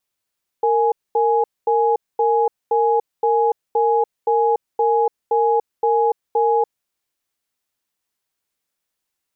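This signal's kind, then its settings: cadence 461 Hz, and 835 Hz, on 0.29 s, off 0.23 s, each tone -16.5 dBFS 6.06 s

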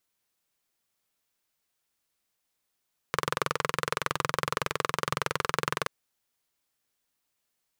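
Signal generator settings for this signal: single-cylinder engine model, steady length 2.73 s, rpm 2600, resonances 150/470/1100 Hz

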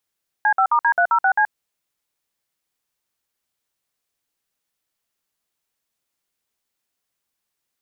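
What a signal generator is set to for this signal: DTMF "C5*D306C", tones 77 ms, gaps 55 ms, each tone -16 dBFS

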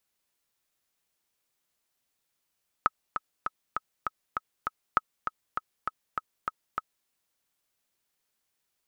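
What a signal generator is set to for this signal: metronome 199 bpm, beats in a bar 7, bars 2, 1280 Hz, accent 8 dB -8 dBFS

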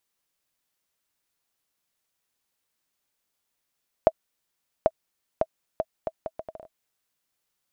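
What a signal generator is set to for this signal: bouncing ball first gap 0.79 s, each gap 0.7, 643 Hz, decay 47 ms -4.5 dBFS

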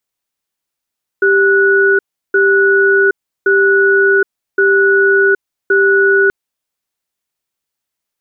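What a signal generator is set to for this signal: cadence 393 Hz, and 1470 Hz, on 0.77 s, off 0.35 s, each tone -10 dBFS 5.08 s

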